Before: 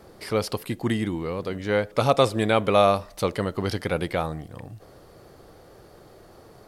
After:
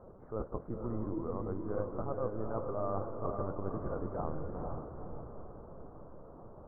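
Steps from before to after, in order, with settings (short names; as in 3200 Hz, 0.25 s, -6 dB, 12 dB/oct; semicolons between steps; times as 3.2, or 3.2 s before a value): flange 1.9 Hz, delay 7.7 ms, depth 4.9 ms, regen -53%; reverse; compressor 6:1, threshold -34 dBFS, peak gain reduction 16 dB; reverse; reverb RT60 0.95 s, pre-delay 33 ms, DRR 19.5 dB; LPC vocoder at 8 kHz pitch kept; steep low-pass 1300 Hz 48 dB/oct; diffused feedback echo 0.476 s, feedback 45%, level -4 dB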